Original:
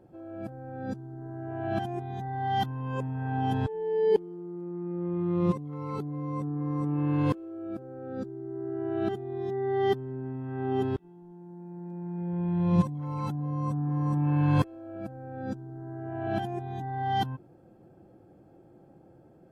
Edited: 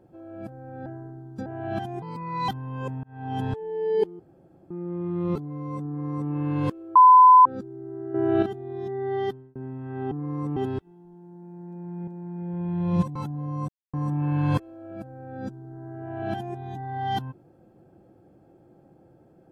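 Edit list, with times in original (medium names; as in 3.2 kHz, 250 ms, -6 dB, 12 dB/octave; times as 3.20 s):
0.86–1.46 s: reverse
2.02–2.61 s: speed 127%
3.16–3.55 s: fade in
4.32–4.83 s: room tone
5.48–5.98 s: delete
6.49–6.94 s: copy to 10.74 s
7.58–8.08 s: bleep 1.01 kHz -8.5 dBFS
8.77–9.05 s: gain +8.5 dB
9.77–10.18 s: fade out
11.87–12.25 s: loop, 2 plays
12.95–13.20 s: delete
13.73–13.98 s: mute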